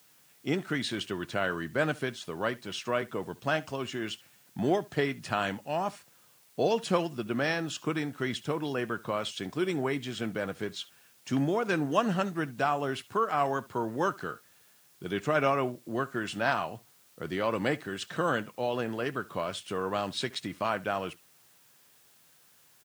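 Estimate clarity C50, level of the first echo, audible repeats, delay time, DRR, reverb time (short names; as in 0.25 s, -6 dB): none, -21.5 dB, 1, 70 ms, none, none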